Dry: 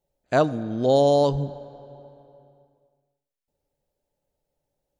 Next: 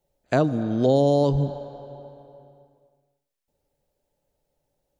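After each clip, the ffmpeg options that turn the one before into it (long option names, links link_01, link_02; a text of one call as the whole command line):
ffmpeg -i in.wav -filter_complex "[0:a]acrossover=split=390[link_01][link_02];[link_02]acompressor=threshold=-26dB:ratio=6[link_03];[link_01][link_03]amix=inputs=2:normalize=0,volume=4dB" out.wav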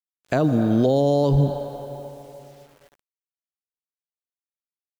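ffmpeg -i in.wav -af "alimiter=limit=-16dB:level=0:latency=1:release=34,acrusher=bits=9:mix=0:aa=0.000001,volume=6dB" out.wav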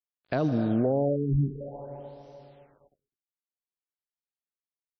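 ffmpeg -i in.wav -af "acrusher=bits=7:mode=log:mix=0:aa=0.000001,aecho=1:1:203:0.0708,afftfilt=real='re*lt(b*sr/1024,380*pow(6200/380,0.5+0.5*sin(2*PI*0.54*pts/sr)))':imag='im*lt(b*sr/1024,380*pow(6200/380,0.5+0.5*sin(2*PI*0.54*pts/sr)))':win_size=1024:overlap=0.75,volume=-6.5dB" out.wav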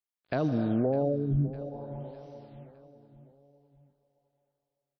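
ffmpeg -i in.wav -af "aecho=1:1:606|1212|1818|2424:0.141|0.0692|0.0339|0.0166,volume=-2dB" out.wav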